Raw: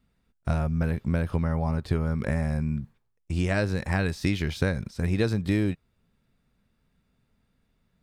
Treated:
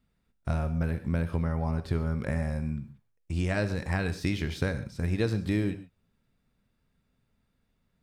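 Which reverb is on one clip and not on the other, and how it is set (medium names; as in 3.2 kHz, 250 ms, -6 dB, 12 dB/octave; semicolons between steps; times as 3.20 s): gated-style reverb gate 160 ms flat, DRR 11 dB; trim -3.5 dB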